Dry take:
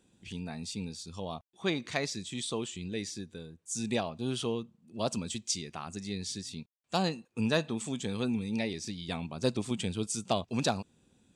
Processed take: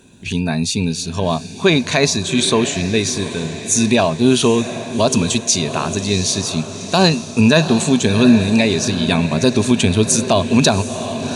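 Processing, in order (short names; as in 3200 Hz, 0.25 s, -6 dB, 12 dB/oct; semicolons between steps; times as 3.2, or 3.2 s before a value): ripple EQ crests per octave 1.5, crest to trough 7 dB; diffused feedback echo 0.753 s, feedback 60%, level -13 dB; maximiser +20 dB; gain -1 dB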